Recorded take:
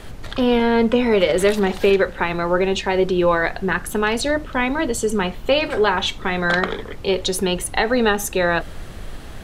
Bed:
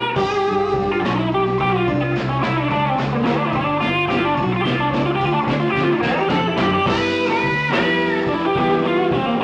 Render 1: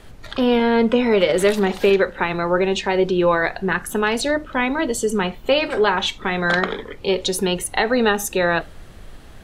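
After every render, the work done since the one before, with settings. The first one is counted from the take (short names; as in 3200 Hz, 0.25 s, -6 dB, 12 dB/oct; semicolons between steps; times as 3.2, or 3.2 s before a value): noise print and reduce 7 dB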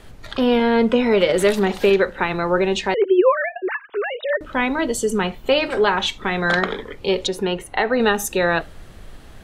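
2.94–4.41 sine-wave speech; 7.27–8 tone controls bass -4 dB, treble -14 dB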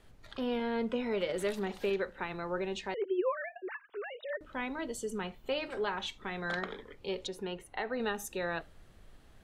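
gain -16.5 dB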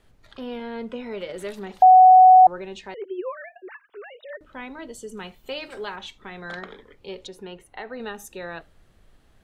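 1.82–2.47 bleep 744 Hz -7 dBFS; 5.17–5.96 high shelf 3600 Hz +10.5 dB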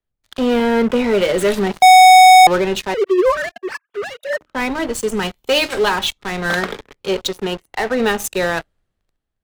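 sample leveller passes 5; three-band expander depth 40%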